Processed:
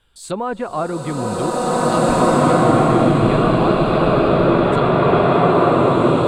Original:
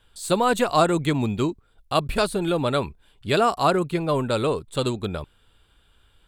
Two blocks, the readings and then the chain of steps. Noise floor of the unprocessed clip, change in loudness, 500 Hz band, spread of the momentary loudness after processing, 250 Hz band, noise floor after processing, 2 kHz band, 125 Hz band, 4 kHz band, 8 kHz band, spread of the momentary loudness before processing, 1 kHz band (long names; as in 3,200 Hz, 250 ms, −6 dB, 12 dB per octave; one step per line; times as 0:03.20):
−62 dBFS, +7.5 dB, +8.5 dB, 10 LU, +10.0 dB, −34 dBFS, +6.0 dB, +9.5 dB, +0.5 dB, +4.0 dB, 10 LU, +8.0 dB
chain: treble cut that deepens with the level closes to 1,600 Hz, closed at −19 dBFS
in parallel at −1.5 dB: brickwall limiter −17 dBFS, peak gain reduction 9.5 dB
on the sum: harmonic generator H 6 −43 dB, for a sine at −5 dBFS
slow-attack reverb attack 2,020 ms, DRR −11.5 dB
level −6 dB